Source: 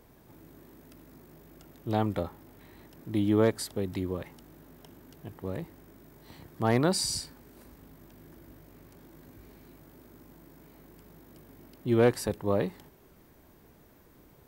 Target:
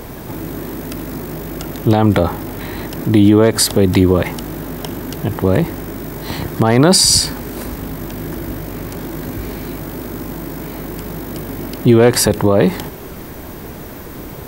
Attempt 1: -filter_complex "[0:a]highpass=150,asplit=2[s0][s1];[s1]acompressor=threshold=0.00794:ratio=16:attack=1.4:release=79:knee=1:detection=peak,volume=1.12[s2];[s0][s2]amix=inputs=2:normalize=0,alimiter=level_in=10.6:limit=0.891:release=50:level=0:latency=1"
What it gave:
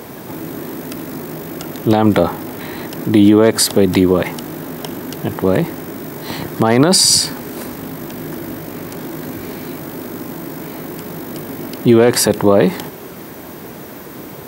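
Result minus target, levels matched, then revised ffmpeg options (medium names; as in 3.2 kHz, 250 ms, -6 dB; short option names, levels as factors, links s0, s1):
125 Hz band -5.5 dB
-filter_complex "[0:a]asplit=2[s0][s1];[s1]acompressor=threshold=0.00794:ratio=16:attack=1.4:release=79:knee=1:detection=peak,volume=1.12[s2];[s0][s2]amix=inputs=2:normalize=0,alimiter=level_in=10.6:limit=0.891:release=50:level=0:latency=1"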